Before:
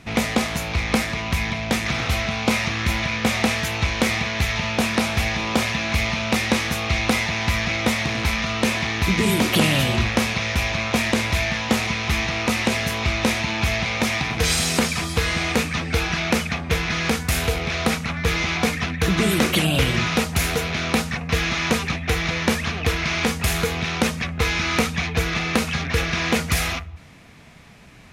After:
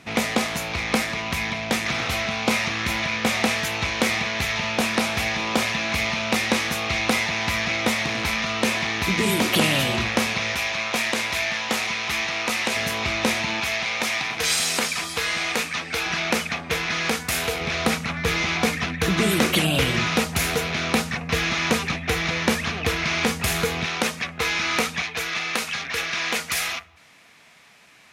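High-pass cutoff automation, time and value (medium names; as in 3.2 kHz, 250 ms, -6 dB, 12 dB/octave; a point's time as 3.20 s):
high-pass 6 dB/octave
230 Hz
from 10.55 s 680 Hz
from 12.76 s 240 Hz
from 13.60 s 760 Hz
from 16.06 s 360 Hz
from 17.61 s 140 Hz
from 23.86 s 460 Hz
from 25.02 s 1.1 kHz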